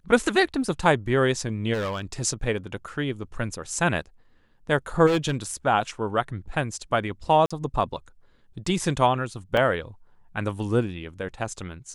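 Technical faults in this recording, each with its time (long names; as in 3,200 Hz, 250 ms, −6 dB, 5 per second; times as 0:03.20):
0:01.73–0:02.22: clipping −24.5 dBFS
0:05.06–0:05.54: clipping −19 dBFS
0:07.46–0:07.50: drop-out 45 ms
0:09.57: drop-out 2.6 ms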